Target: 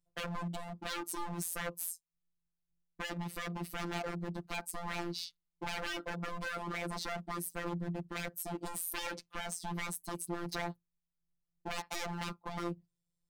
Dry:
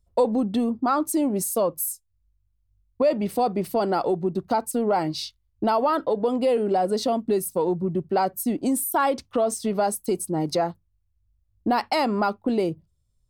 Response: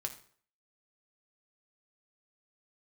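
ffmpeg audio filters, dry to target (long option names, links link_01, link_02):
-af "highpass=43,aeval=exprs='0.0631*(abs(mod(val(0)/0.0631+3,4)-2)-1)':channel_layout=same,afftfilt=real='hypot(re,im)*cos(PI*b)':imag='0':win_size=1024:overlap=0.75,volume=-6dB"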